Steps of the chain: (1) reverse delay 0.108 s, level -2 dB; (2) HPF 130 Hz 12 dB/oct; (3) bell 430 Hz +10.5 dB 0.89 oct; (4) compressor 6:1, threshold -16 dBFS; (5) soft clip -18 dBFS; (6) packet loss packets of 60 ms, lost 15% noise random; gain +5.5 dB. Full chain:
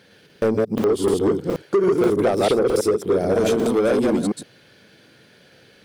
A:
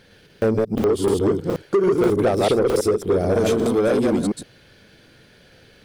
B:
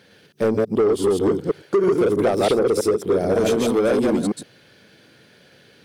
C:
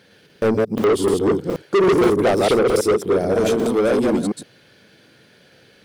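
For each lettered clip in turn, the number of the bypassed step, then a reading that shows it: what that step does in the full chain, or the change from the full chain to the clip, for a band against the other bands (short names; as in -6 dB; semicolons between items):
2, 125 Hz band +3.5 dB; 6, crest factor change -4.5 dB; 4, mean gain reduction 3.5 dB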